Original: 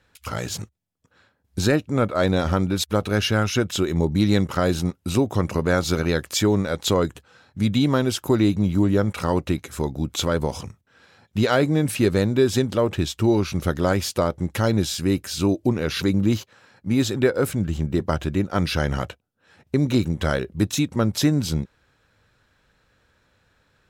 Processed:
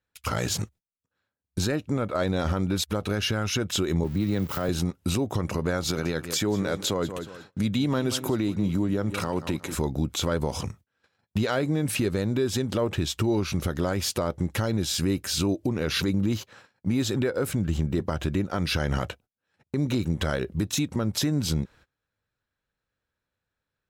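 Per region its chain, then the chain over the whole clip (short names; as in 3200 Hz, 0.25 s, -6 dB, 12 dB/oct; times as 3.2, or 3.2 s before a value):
4.04–4.69 switching spikes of -20.5 dBFS + bell 9500 Hz -14 dB 1.9 oct + three-band expander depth 70%
5.87–9.75 HPF 96 Hz + feedback echo 0.181 s, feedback 26%, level -16.5 dB
whole clip: gate -50 dBFS, range -25 dB; compressor 5:1, threshold -24 dBFS; limiter -19.5 dBFS; gain +3.5 dB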